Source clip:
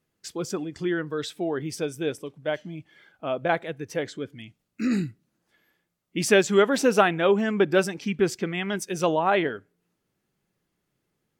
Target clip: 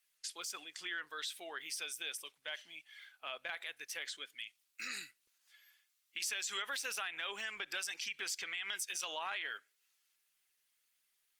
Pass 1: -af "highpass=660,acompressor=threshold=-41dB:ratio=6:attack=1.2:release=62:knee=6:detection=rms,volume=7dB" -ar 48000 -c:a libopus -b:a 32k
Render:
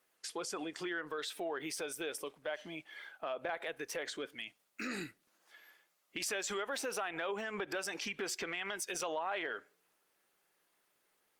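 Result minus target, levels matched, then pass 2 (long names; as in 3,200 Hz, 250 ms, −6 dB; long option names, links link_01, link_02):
500 Hz band +12.0 dB
-af "highpass=2500,acompressor=threshold=-41dB:ratio=6:attack=1.2:release=62:knee=6:detection=rms,volume=7dB" -ar 48000 -c:a libopus -b:a 32k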